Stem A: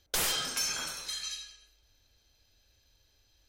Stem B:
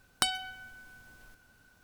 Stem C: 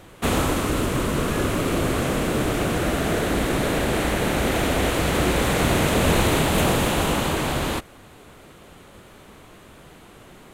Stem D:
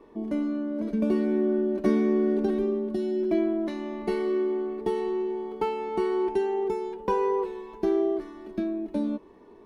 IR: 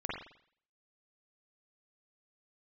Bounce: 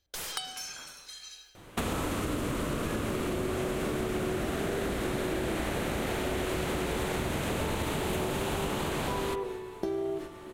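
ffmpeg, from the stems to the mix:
-filter_complex "[0:a]volume=-10dB,asplit=2[a][b];[b]volume=-11dB[c];[1:a]highpass=430,aecho=1:1:2.4:0.94,adelay=150,volume=-7.5dB[d];[2:a]adelay=1550,volume=2.5dB,asplit=2[e][f];[f]volume=-15dB[g];[3:a]highshelf=f=3.4k:g=11.5,tremolo=f=240:d=0.333,adelay=2000,volume=1.5dB,asplit=2[h][i];[i]volume=-13dB[j];[e][h]amix=inputs=2:normalize=0,agate=range=-11dB:threshold=-34dB:ratio=16:detection=peak,acompressor=threshold=-20dB:ratio=6,volume=0dB[k];[4:a]atrim=start_sample=2205[l];[c][g][j]amix=inputs=3:normalize=0[m];[m][l]afir=irnorm=-1:irlink=0[n];[a][d][k][n]amix=inputs=4:normalize=0,acompressor=threshold=-32dB:ratio=3"

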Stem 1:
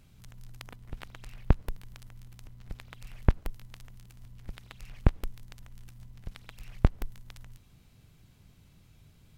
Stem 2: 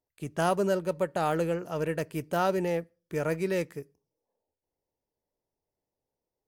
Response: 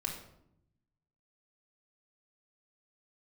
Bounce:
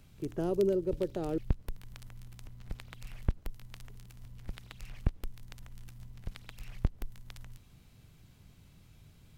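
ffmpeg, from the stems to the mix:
-filter_complex "[0:a]alimiter=limit=-11.5dB:level=0:latency=1:release=482,volume=0.5dB[a];[1:a]lowpass=f=1.6k:p=1,equalizer=f=370:w=1.3:g=12.5,volume=-7dB,asplit=3[b][c][d];[b]atrim=end=1.38,asetpts=PTS-STARTPTS,afade=t=out:st=1.376:d=0.004:c=hsin[e];[c]atrim=start=1.38:end=3.89,asetpts=PTS-STARTPTS,volume=0[f];[d]atrim=start=3.89,asetpts=PTS-STARTPTS,afade=t=in:d=0.004:c=hsin[g];[e][f][g]concat=n=3:v=0:a=1[h];[a][h]amix=inputs=2:normalize=0,acrossover=split=460|3000[i][j][k];[j]acompressor=threshold=-48dB:ratio=3[l];[i][l][k]amix=inputs=3:normalize=0"

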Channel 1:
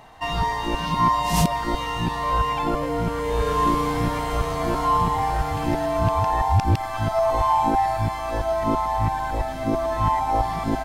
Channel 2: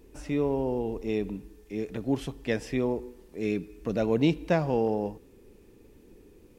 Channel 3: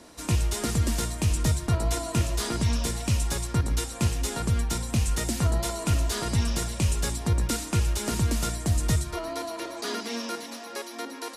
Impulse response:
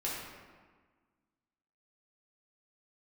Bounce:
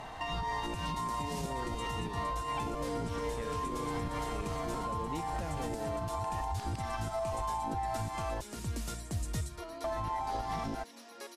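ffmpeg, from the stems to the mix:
-filter_complex "[0:a]lowpass=11k,alimiter=limit=-17dB:level=0:latency=1:release=288,volume=3dB,asplit=3[a][b][c];[a]atrim=end=8.41,asetpts=PTS-STARTPTS,afade=t=out:st=8.406:d=0.004:c=hsin[d];[b]atrim=start=8.41:end=9.84,asetpts=PTS-STARTPTS,volume=0[e];[c]atrim=start=9.84,asetpts=PTS-STARTPTS,afade=t=in:d=0.004:c=hsin[f];[d][e][f]concat=n=3:v=0:a=1[g];[1:a]adelay=900,volume=-2dB[h];[2:a]adelay=450,volume=-11dB[i];[g][h]amix=inputs=2:normalize=0,acompressor=threshold=-26dB:ratio=6,volume=0dB[j];[i][j]amix=inputs=2:normalize=0,alimiter=level_in=2.5dB:limit=-24dB:level=0:latency=1:release=451,volume=-2.5dB"

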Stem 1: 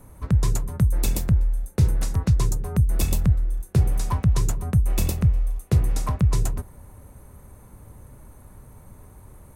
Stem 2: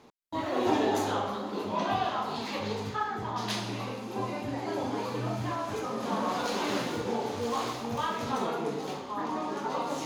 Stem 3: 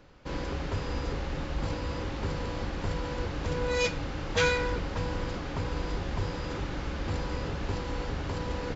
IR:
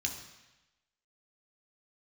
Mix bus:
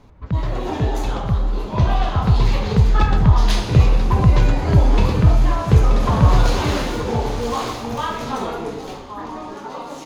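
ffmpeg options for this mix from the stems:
-filter_complex "[0:a]lowpass=f=3.9k:w=0.5412,lowpass=f=3.9k:w=1.3066,volume=-2dB,asplit=2[a][b];[b]volume=-11dB[c];[1:a]volume=0dB[d];[2:a]volume=-15dB[e];[c]aecho=0:1:930:1[f];[a][d][e][f]amix=inputs=4:normalize=0,dynaudnorm=f=250:g=17:m=11.5dB"

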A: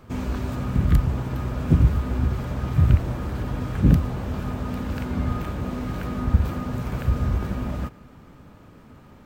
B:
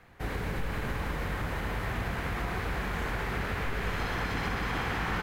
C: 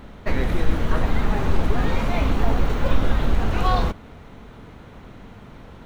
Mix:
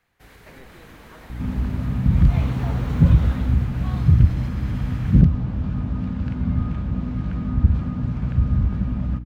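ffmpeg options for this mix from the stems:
-filter_complex "[0:a]lowpass=4.4k,lowshelf=f=270:t=q:w=1.5:g=9,aeval=exprs='val(0)+0.0562*(sin(2*PI*60*n/s)+sin(2*PI*2*60*n/s)/2+sin(2*PI*3*60*n/s)/3+sin(2*PI*4*60*n/s)/4+sin(2*PI*5*60*n/s)/5)':c=same,adelay=1300,volume=-6dB[a];[1:a]highshelf=f=2.4k:g=11,volume=-16dB[b];[2:a]highpass=f=230:p=1,adelay=200,volume=-7.5dB,afade=t=in:st=2.08:d=0.36:silence=0.281838,afade=t=out:st=3.31:d=0.31:silence=0.316228[c];[a][b][c]amix=inputs=3:normalize=0,asoftclip=type=tanh:threshold=-1.5dB"

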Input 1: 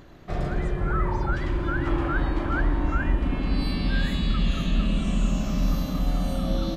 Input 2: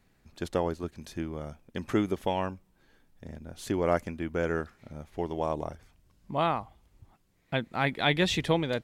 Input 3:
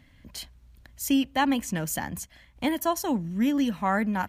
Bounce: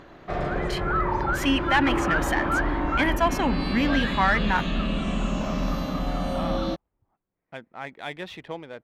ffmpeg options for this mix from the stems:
-filter_complex "[0:a]volume=0dB[a];[1:a]adynamicsmooth=sensitivity=7.5:basefreq=1.6k,volume=-13dB[b];[2:a]equalizer=f=2.2k:t=o:w=1.7:g=9.5,adelay=350,volume=-1.5dB[c];[a][b][c]amix=inputs=3:normalize=0,asplit=2[d][e];[e]highpass=f=720:p=1,volume=14dB,asoftclip=type=tanh:threshold=-9.5dB[f];[d][f]amix=inputs=2:normalize=0,lowpass=f=1.5k:p=1,volume=-6dB"

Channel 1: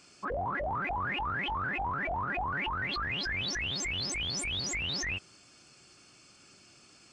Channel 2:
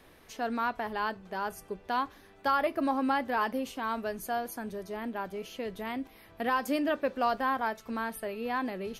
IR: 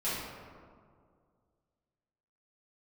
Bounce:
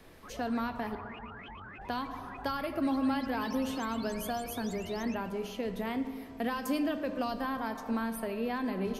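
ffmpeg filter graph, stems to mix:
-filter_complex "[0:a]volume=-16dB,asplit=2[a][b];[b]volume=-6.5dB[c];[1:a]volume=-1dB,asplit=3[d][e][f];[d]atrim=end=0.95,asetpts=PTS-STARTPTS,afade=t=out:st=0.946:d=0.004:c=hsin[g];[e]atrim=start=0.95:end=1.81,asetpts=PTS-STARTPTS,volume=0[h];[f]atrim=start=1.81,asetpts=PTS-STARTPTS,afade=t=in:d=0.004:c=hsin[i];[g][h][i]concat=n=3:v=0:a=1,asplit=2[j][k];[k]volume=-15dB[l];[2:a]atrim=start_sample=2205[m];[l][m]afir=irnorm=-1:irlink=0[n];[c]aecho=0:1:116:1[o];[a][j][n][o]amix=inputs=4:normalize=0,acrossover=split=260|3000[p][q][r];[q]acompressor=threshold=-34dB:ratio=6[s];[p][s][r]amix=inputs=3:normalize=0,lowshelf=f=360:g=5"

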